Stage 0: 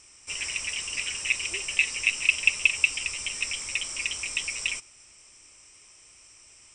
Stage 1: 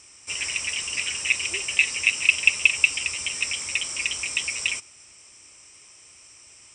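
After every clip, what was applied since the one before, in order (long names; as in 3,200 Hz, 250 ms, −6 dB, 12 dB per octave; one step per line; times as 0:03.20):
high-pass filter 58 Hz
level +3.5 dB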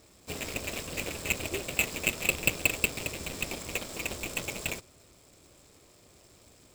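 running median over 15 samples
flat-topped bell 1,300 Hz −8.5 dB
level +4.5 dB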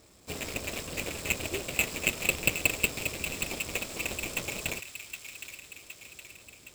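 delay with a high-pass on its return 766 ms, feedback 58%, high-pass 1,600 Hz, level −8.5 dB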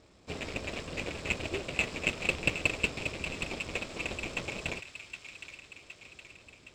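noise that follows the level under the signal 14 dB
high-frequency loss of the air 120 metres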